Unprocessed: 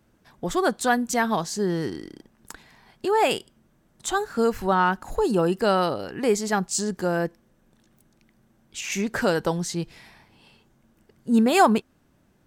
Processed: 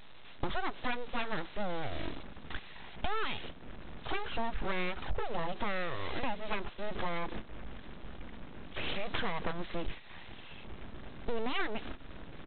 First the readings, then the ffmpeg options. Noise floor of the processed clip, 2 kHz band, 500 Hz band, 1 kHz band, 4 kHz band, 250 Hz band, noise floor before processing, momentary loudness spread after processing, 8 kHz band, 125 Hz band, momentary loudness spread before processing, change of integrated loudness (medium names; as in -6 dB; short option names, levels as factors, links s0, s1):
-48 dBFS, -9.0 dB, -15.5 dB, -13.5 dB, -8.0 dB, -17.5 dB, -64 dBFS, 14 LU, under -40 dB, -11.5 dB, 12 LU, -14.5 dB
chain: -af "aeval=exprs='val(0)+0.5*0.0355*sgn(val(0))':c=same,agate=range=0.126:threshold=0.0251:ratio=16:detection=peak,asubboost=boost=4.5:cutoff=55,acompressor=threshold=0.0158:ratio=6,aresample=8000,aeval=exprs='abs(val(0))':c=same,aresample=44100,volume=2.11"